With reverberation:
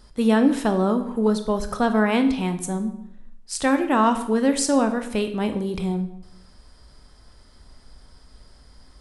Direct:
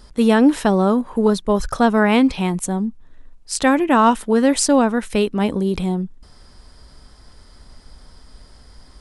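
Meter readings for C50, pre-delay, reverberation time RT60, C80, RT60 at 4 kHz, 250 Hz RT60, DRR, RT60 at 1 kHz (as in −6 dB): 11.0 dB, 18 ms, 0.75 s, 13.5 dB, 0.60 s, 0.85 s, 7.5 dB, 0.70 s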